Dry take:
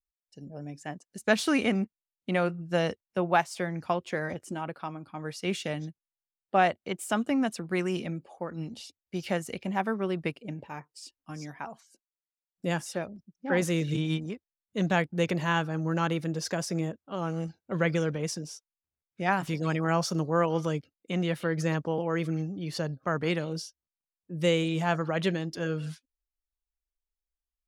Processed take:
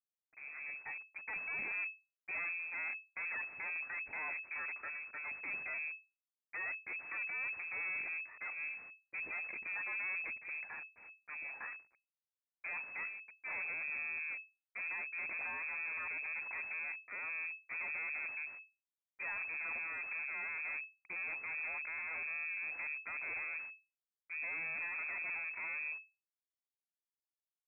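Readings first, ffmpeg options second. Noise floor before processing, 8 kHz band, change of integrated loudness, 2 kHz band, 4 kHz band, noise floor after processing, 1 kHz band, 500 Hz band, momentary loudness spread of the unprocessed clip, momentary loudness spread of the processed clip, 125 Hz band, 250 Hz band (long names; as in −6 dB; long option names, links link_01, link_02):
below −85 dBFS, below −35 dB, −9.5 dB, −2.0 dB, below −40 dB, below −85 dBFS, −19.0 dB, −29.5 dB, 15 LU, 8 LU, below −40 dB, −36.5 dB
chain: -af "alimiter=limit=-22dB:level=0:latency=1:release=35,volume=34dB,asoftclip=hard,volume=-34dB,acrusher=bits=6:dc=4:mix=0:aa=0.000001,lowpass=frequency=2200:width_type=q:width=0.5098,lowpass=frequency=2200:width_type=q:width=0.6013,lowpass=frequency=2200:width_type=q:width=0.9,lowpass=frequency=2200:width_type=q:width=2.563,afreqshift=-2600,volume=-1dB"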